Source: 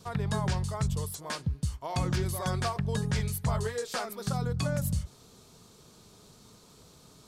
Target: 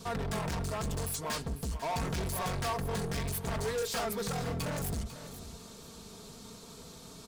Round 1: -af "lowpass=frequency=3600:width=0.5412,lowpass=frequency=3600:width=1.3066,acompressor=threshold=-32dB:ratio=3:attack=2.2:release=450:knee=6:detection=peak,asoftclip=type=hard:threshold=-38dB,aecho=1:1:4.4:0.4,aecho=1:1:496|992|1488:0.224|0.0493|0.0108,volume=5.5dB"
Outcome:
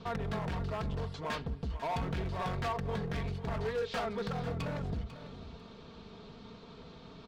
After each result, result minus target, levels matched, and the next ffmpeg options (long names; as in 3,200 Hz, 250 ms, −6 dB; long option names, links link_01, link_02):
downward compressor: peak gain reduction +8 dB; 4,000 Hz band −3.5 dB
-af "lowpass=frequency=3600:width=0.5412,lowpass=frequency=3600:width=1.3066,asoftclip=type=hard:threshold=-38dB,aecho=1:1:4.4:0.4,aecho=1:1:496|992|1488:0.224|0.0493|0.0108,volume=5.5dB"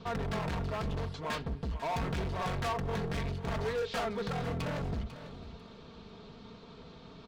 4,000 Hz band −2.5 dB
-af "asoftclip=type=hard:threshold=-38dB,aecho=1:1:4.4:0.4,aecho=1:1:496|992|1488:0.224|0.0493|0.0108,volume=5.5dB"